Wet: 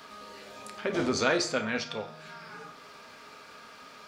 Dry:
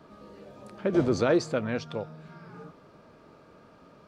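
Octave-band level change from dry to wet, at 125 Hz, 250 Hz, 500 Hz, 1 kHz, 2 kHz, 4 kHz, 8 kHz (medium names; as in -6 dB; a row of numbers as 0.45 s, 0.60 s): -8.0 dB, -5.0 dB, -3.5 dB, +2.5 dB, +6.0 dB, +8.0 dB, +8.0 dB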